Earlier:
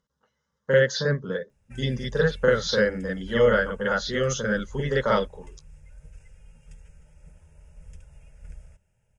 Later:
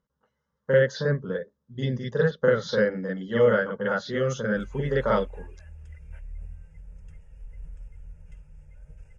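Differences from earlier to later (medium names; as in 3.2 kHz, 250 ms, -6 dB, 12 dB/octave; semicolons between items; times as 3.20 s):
background: entry +2.85 s; master: add treble shelf 2.7 kHz -11.5 dB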